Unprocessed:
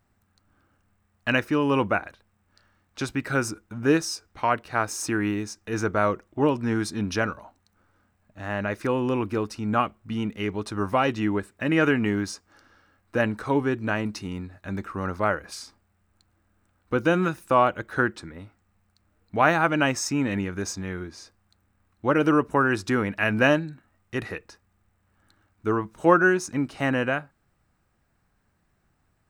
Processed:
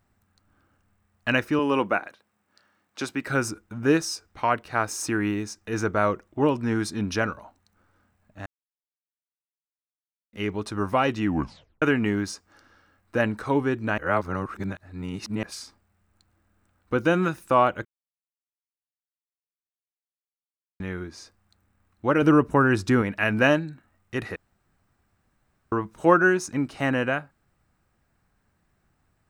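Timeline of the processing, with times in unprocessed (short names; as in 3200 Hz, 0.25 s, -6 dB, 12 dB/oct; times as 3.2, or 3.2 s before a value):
1.59–3.27 HPF 210 Hz
8.46–10.33 mute
11.25 tape stop 0.57 s
13.98–15.43 reverse
17.85–20.8 mute
22.22–23.02 low shelf 270 Hz +7.5 dB
24.36–25.72 room tone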